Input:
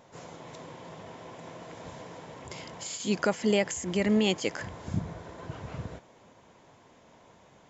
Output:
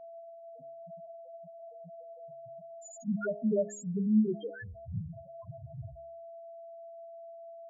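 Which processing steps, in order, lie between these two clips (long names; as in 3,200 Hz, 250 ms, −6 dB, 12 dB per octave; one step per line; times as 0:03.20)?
steady tone 670 Hz −46 dBFS
spectral peaks only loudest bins 1
hum removal 69.03 Hz, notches 10
level +5 dB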